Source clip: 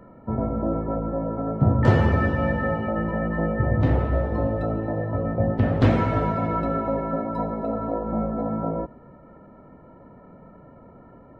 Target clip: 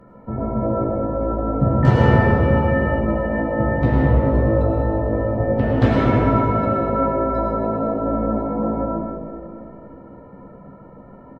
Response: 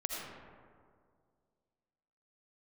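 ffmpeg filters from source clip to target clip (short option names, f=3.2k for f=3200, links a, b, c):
-filter_complex "[0:a]asplit=2[a][b];[b]adelay=15,volume=-7dB[c];[a][c]amix=inputs=2:normalize=0[d];[1:a]atrim=start_sample=2205,asetrate=33075,aresample=44100[e];[d][e]afir=irnorm=-1:irlink=0,volume=-1dB"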